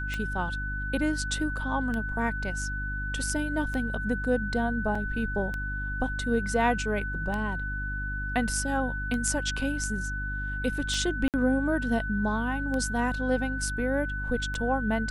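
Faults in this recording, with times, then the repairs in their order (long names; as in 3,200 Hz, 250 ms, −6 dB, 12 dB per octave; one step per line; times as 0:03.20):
mains hum 50 Hz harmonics 6 −34 dBFS
scratch tick 33 1/3 rpm −20 dBFS
whistle 1,500 Hz −33 dBFS
0:04.95: drop-out 4.2 ms
0:11.28–0:11.34: drop-out 58 ms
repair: click removal
hum removal 50 Hz, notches 6
notch filter 1,500 Hz, Q 30
repair the gap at 0:04.95, 4.2 ms
repair the gap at 0:11.28, 58 ms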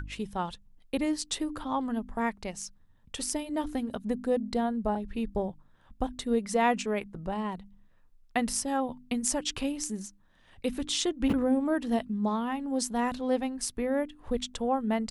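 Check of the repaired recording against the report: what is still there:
none of them is left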